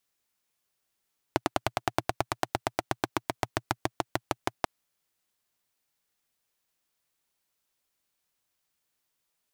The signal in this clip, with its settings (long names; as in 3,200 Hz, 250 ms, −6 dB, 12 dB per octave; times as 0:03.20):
pulse-train model of a single-cylinder engine, changing speed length 3.29 s, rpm 1,200, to 700, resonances 120/330/680 Hz